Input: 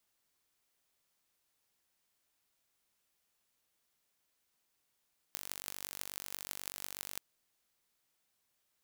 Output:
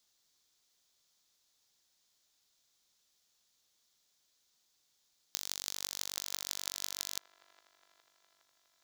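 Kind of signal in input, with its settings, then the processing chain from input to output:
pulse train 48.2/s, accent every 8, -10.5 dBFS 1.84 s
band shelf 4900 Hz +10 dB 1.3 oct; band-limited delay 0.412 s, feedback 64%, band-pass 980 Hz, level -14.5 dB

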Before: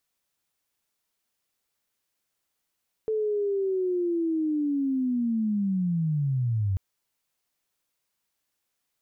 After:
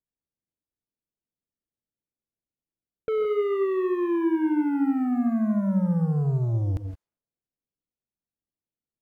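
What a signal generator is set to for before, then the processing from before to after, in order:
chirp linear 440 Hz -> 92 Hz -23.5 dBFS -> -22.5 dBFS 3.69 s
low-pass opened by the level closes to 350 Hz, open at -28 dBFS; sample leveller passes 2; non-linear reverb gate 0.19 s rising, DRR 6.5 dB

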